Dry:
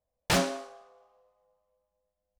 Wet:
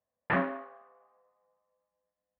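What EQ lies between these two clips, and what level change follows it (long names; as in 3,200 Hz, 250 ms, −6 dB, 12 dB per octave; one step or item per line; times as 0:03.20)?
high-frequency loss of the air 250 metres
loudspeaker in its box 120–2,400 Hz, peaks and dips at 240 Hz +6 dB, 1,100 Hz +8 dB, 1,800 Hz +10 dB
−3.5 dB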